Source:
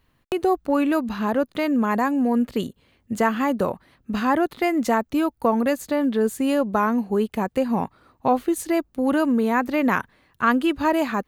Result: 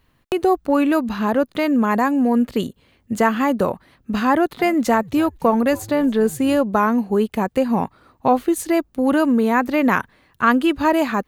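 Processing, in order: 4.31–6.6 frequency-shifting echo 0.28 s, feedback 46%, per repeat -120 Hz, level -21 dB; gain +3.5 dB

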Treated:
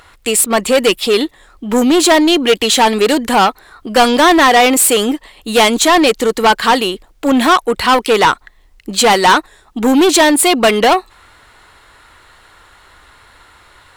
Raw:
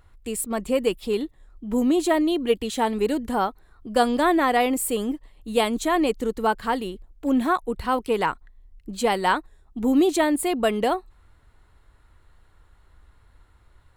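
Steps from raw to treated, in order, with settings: overdrive pedal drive 21 dB, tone 3400 Hz, clips at -7.5 dBFS; high shelf 2500 Hz +9.5 dB; gain +5 dB

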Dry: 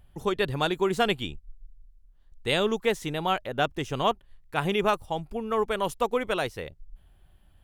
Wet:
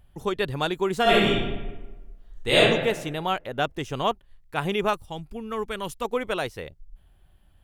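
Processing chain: 1.02–2.58 reverb throw, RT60 1.2 s, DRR -9 dB; 4.93–6.05 bell 680 Hz -7.5 dB 1.5 oct

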